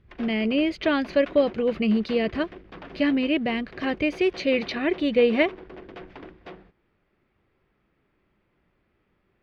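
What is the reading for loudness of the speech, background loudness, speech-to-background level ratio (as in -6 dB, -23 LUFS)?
-24.0 LUFS, -43.5 LUFS, 19.5 dB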